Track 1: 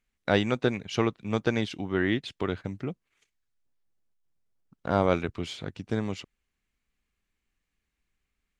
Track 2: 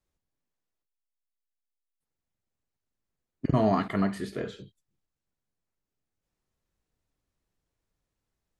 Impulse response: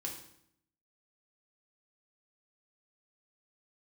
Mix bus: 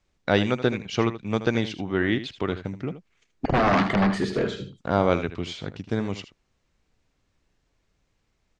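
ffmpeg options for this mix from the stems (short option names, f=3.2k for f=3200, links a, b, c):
-filter_complex "[0:a]volume=2.5dB,asplit=2[a][b];[b]volume=-12.5dB[c];[1:a]aeval=exprs='0.282*sin(PI/2*3.98*val(0)/0.282)':c=same,volume=-5.5dB,asplit=2[d][e];[e]volume=-10.5dB[f];[c][f]amix=inputs=2:normalize=0,aecho=0:1:78:1[g];[a][d][g]amix=inputs=3:normalize=0,lowpass=f=7.1k:w=0.5412,lowpass=f=7.1k:w=1.3066"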